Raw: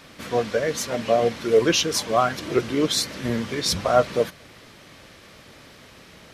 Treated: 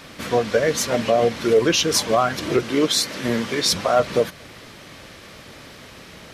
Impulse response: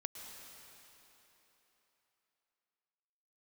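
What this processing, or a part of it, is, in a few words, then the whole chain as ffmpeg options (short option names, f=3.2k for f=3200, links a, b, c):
clipper into limiter: -filter_complex "[0:a]asoftclip=type=hard:threshold=-8.5dB,alimiter=limit=-13.5dB:level=0:latency=1:release=176,asettb=1/sr,asplit=3[a][b][c];[a]atrim=end=2.634[d];[b]atrim=start=2.63:end=4,asetpts=PTS-STARTPTS,afade=t=in:d=0.004:c=qsin,afade=t=out:st=1.366:d=0.004:c=qsin,highpass=f=230:p=1[e];[c]atrim=start=3.996[f];[d][e]acrossfade=d=0.004:c1=hsin:c2=qsin[g];[g][f]acrossfade=d=0.004:c1=qsin:c2=hsin,volume=5.5dB"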